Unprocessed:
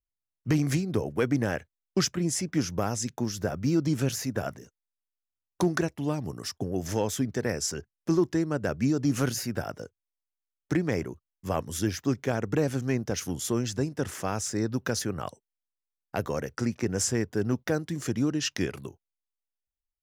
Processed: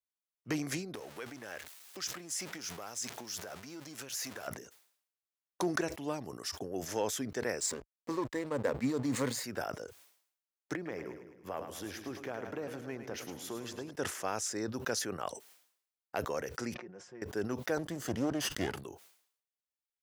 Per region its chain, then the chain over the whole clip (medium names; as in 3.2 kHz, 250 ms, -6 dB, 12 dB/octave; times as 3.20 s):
0.95–4.48 s: jump at every zero crossing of -37 dBFS + compression 3:1, threshold -36 dBFS + tilt shelf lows -4 dB, about 900 Hz
7.60–9.44 s: rippled EQ curve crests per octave 1, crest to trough 12 dB + hysteresis with a dead band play -35.5 dBFS
10.75–13.91 s: peaking EQ 7.6 kHz -11 dB 1.6 oct + compression 4:1, threshold -28 dBFS + two-band feedback delay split 370 Hz, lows 140 ms, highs 106 ms, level -9 dB
16.74–17.22 s: comb 5.6 ms, depth 71% + compression 2:1, threshold -48 dBFS + tape spacing loss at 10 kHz 32 dB
17.77–18.84 s: comb filter that takes the minimum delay 0.63 ms + high-pass 48 Hz + bass shelf 250 Hz +10 dB
whole clip: high-pass 45 Hz; tone controls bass -15 dB, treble 0 dB; decay stretcher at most 91 dB/s; trim -3.5 dB